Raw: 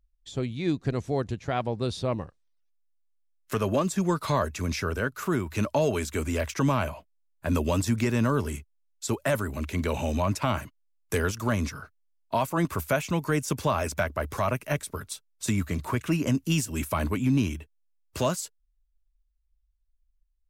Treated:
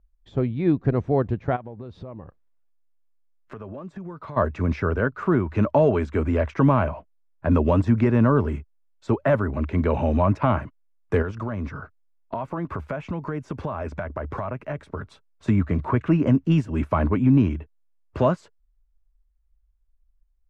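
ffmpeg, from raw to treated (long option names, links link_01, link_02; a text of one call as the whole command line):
ffmpeg -i in.wav -filter_complex "[0:a]asplit=3[link_01][link_02][link_03];[link_01]afade=type=out:start_time=1.55:duration=0.02[link_04];[link_02]acompressor=threshold=-39dB:ratio=10:attack=3.2:release=140:knee=1:detection=peak,afade=type=in:start_time=1.55:duration=0.02,afade=type=out:start_time=4.36:duration=0.02[link_05];[link_03]afade=type=in:start_time=4.36:duration=0.02[link_06];[link_04][link_05][link_06]amix=inputs=3:normalize=0,asettb=1/sr,asplit=3[link_07][link_08][link_09];[link_07]atrim=end=11.224[link_10];[link_08]atrim=start=11.22:end=15.09,asetpts=PTS-STARTPTS,afade=type=in:duration=0.004:curve=qsin,afade=type=out:start_time=3.866:duration=0.004:curve=qsin,acompressor=threshold=-31dB:ratio=6:attack=3.2:release=140:knee=1:detection=peak[link_11];[link_09]atrim=start=15.086[link_12];[link_10][link_11]acrossfade=duration=0.004:curve1=hsin:curve2=qsin[link_13];[link_13][link_12]acrossfade=duration=0.004:curve1=qsin:curve2=hsin,lowpass=1400,volume=6.5dB" out.wav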